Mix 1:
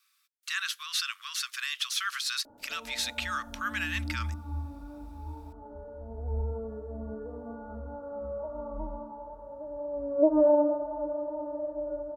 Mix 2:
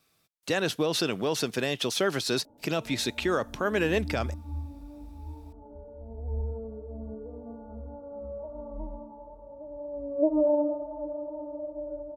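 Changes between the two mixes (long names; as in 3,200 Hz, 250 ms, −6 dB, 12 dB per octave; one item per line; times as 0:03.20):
speech: remove Butterworth high-pass 1,100 Hz 96 dB per octave
background: add Gaussian smoothing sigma 9 samples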